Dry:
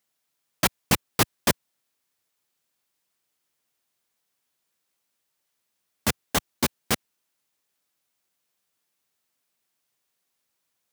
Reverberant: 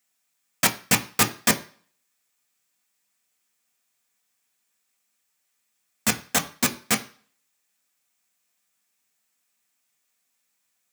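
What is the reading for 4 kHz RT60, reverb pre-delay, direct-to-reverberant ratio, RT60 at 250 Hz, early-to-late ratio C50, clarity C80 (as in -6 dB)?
0.45 s, 3 ms, 4.5 dB, 0.35 s, 16.5 dB, 20.5 dB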